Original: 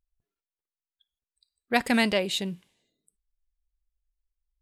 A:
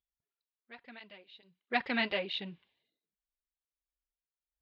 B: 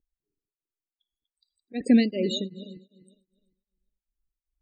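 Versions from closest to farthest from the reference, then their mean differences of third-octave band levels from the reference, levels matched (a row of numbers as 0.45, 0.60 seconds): A, B; 6.0, 13.5 decibels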